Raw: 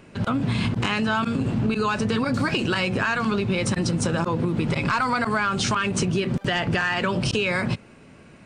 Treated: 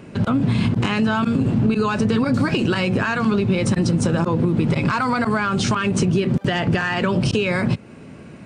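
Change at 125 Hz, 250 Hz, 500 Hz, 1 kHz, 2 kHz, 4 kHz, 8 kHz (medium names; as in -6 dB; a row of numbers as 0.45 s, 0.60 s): +5.5 dB, +5.5 dB, +4.0 dB, +1.5 dB, +0.5 dB, 0.0 dB, -0.5 dB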